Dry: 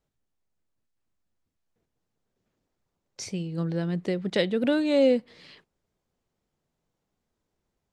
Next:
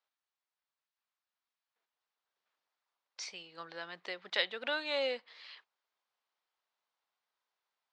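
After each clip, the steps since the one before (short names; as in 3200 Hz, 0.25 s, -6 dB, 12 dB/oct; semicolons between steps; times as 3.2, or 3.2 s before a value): Chebyshev band-pass 1000–4400 Hz, order 2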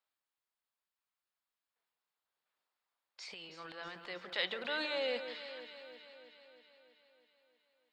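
notch 5900 Hz, Q 6.3; transient shaper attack -3 dB, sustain +9 dB; echo with dull and thin repeats by turns 0.16 s, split 1700 Hz, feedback 78%, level -9 dB; gain -2.5 dB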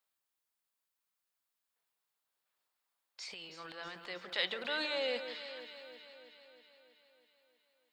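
high shelf 6100 Hz +8 dB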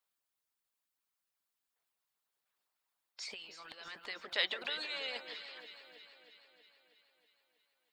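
harmonic-percussive split harmonic -17 dB; gain +3.5 dB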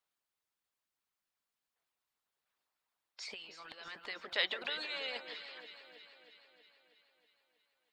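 high shelf 6600 Hz -7.5 dB; gain +1 dB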